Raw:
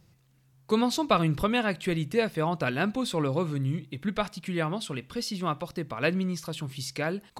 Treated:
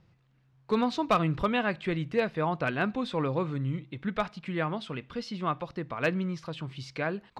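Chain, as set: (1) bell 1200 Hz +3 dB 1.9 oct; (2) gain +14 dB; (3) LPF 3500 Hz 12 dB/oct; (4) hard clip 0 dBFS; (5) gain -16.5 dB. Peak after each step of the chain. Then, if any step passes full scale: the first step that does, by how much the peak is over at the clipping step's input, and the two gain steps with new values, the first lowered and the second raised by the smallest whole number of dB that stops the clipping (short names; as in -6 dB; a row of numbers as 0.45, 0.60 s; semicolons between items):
-8.0, +6.0, +5.5, 0.0, -16.5 dBFS; step 2, 5.5 dB; step 2 +8 dB, step 5 -10.5 dB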